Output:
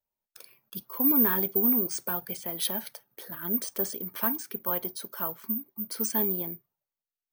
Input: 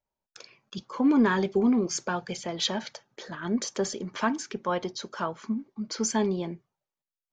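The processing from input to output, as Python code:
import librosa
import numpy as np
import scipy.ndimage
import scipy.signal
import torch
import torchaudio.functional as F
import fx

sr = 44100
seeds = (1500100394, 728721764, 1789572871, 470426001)

y = (np.kron(scipy.signal.resample_poly(x, 1, 3), np.eye(3)[0]) * 3)[:len(x)]
y = y * 10.0 ** (-6.0 / 20.0)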